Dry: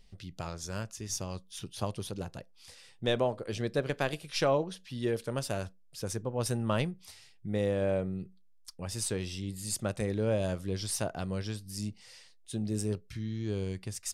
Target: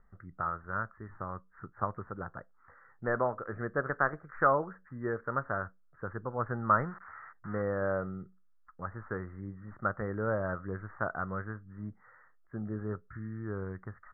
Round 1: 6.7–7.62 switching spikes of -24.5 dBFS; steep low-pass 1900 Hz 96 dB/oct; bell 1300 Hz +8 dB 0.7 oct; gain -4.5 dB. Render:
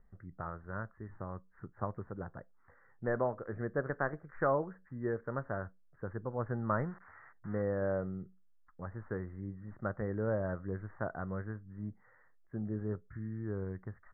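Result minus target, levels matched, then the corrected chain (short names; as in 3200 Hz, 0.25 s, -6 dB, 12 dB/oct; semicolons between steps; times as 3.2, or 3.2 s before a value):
1000 Hz band -4.5 dB
6.7–7.62 switching spikes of -24.5 dBFS; steep low-pass 1900 Hz 96 dB/oct; bell 1300 Hz +20 dB 0.7 oct; gain -4.5 dB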